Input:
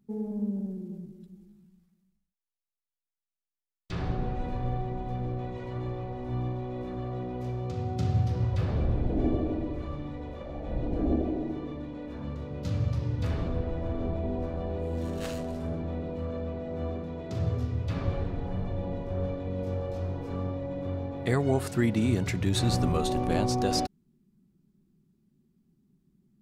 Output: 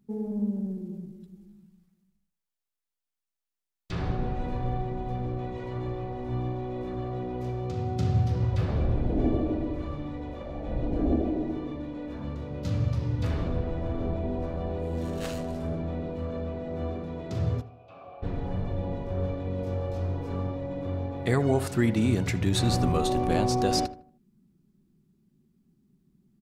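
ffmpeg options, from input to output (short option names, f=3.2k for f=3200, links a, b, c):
-filter_complex "[0:a]asplit=3[a][b][c];[a]afade=t=out:st=17.6:d=0.02[d];[b]asplit=3[e][f][g];[e]bandpass=f=730:t=q:w=8,volume=0dB[h];[f]bandpass=f=1.09k:t=q:w=8,volume=-6dB[i];[g]bandpass=f=2.44k:t=q:w=8,volume=-9dB[j];[h][i][j]amix=inputs=3:normalize=0,afade=t=in:st=17.6:d=0.02,afade=t=out:st=18.22:d=0.02[k];[c]afade=t=in:st=18.22:d=0.02[l];[d][k][l]amix=inputs=3:normalize=0,asplit=2[m][n];[n]adelay=78,lowpass=f=1.7k:p=1,volume=-13.5dB,asplit=2[o][p];[p]adelay=78,lowpass=f=1.7k:p=1,volume=0.38,asplit=2[q][r];[r]adelay=78,lowpass=f=1.7k:p=1,volume=0.38,asplit=2[s][t];[t]adelay=78,lowpass=f=1.7k:p=1,volume=0.38[u];[m][o][q][s][u]amix=inputs=5:normalize=0,volume=1.5dB"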